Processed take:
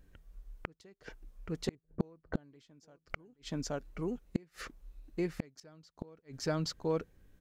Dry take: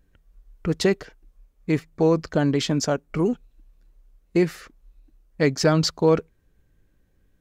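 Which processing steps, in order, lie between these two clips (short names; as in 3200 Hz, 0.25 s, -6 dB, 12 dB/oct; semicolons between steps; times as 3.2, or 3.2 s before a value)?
echo 0.825 s -15.5 dB; flipped gate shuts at -19 dBFS, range -39 dB; 1.75–2.44 low-pass opened by the level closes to 350 Hz, open at -29.5 dBFS; gain +1 dB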